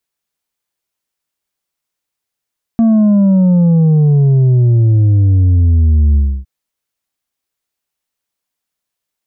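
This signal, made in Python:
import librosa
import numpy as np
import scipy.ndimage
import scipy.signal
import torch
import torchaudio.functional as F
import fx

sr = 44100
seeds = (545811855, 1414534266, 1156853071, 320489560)

y = fx.sub_drop(sr, level_db=-7, start_hz=230.0, length_s=3.66, drive_db=4.5, fade_s=0.29, end_hz=65.0)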